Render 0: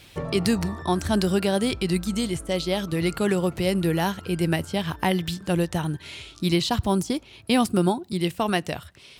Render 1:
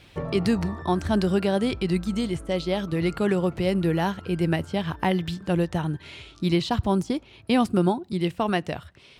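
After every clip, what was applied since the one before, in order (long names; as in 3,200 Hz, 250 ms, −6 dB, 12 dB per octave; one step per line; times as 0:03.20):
low-pass filter 2,600 Hz 6 dB per octave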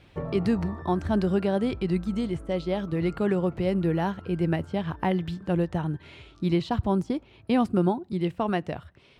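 high-shelf EQ 2,800 Hz −11 dB
level −1.5 dB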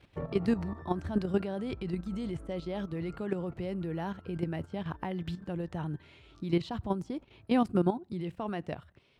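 output level in coarse steps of 11 dB
level −1.5 dB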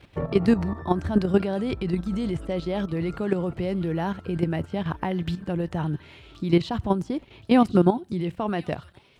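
delay with a high-pass on its return 1,073 ms, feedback 36%, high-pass 2,700 Hz, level −13.5 dB
level +8.5 dB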